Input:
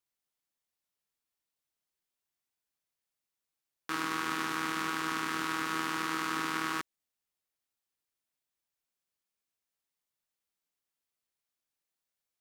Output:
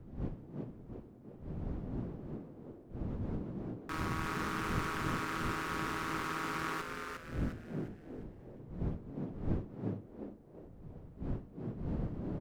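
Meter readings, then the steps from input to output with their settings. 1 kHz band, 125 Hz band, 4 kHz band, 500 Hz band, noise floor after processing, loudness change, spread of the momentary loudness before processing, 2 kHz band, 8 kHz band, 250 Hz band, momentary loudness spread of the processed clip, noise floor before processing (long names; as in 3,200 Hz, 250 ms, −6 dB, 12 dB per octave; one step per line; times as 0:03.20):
−3.5 dB, +15.0 dB, −7.5 dB, +4.5 dB, −55 dBFS, −6.5 dB, 5 LU, −4.5 dB, −7.5 dB, +3.0 dB, 15 LU, below −85 dBFS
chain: one-sided soft clipper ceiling −31.5 dBFS
wind on the microphone 190 Hz −40 dBFS
echo with shifted repeats 355 ms, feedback 38%, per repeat +100 Hz, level −4.5 dB
level −2.5 dB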